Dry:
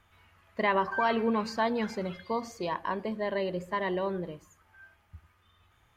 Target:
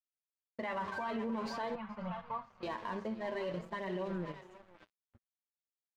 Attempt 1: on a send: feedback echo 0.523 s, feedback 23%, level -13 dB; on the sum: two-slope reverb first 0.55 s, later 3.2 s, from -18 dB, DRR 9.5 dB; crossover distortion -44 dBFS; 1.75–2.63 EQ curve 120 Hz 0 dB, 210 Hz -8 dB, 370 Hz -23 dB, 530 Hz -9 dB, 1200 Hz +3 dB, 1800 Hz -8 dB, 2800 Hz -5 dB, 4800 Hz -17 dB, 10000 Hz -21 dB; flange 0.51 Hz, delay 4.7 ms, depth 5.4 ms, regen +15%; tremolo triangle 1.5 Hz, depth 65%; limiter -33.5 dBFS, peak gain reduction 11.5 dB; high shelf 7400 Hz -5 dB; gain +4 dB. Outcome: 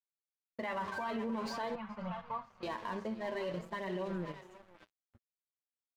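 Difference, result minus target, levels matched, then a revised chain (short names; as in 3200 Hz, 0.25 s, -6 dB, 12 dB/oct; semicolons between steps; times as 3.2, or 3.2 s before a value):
8000 Hz band +3.5 dB
on a send: feedback echo 0.523 s, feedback 23%, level -13 dB; on the sum: two-slope reverb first 0.55 s, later 3.2 s, from -18 dB, DRR 9.5 dB; crossover distortion -44 dBFS; 1.75–2.63 EQ curve 120 Hz 0 dB, 210 Hz -8 dB, 370 Hz -23 dB, 530 Hz -9 dB, 1200 Hz +3 dB, 1800 Hz -8 dB, 2800 Hz -5 dB, 4800 Hz -17 dB, 10000 Hz -21 dB; flange 0.51 Hz, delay 4.7 ms, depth 5.4 ms, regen +15%; tremolo triangle 1.5 Hz, depth 65%; limiter -33.5 dBFS, peak gain reduction 11.5 dB; high shelf 7400 Hz -13.5 dB; gain +4 dB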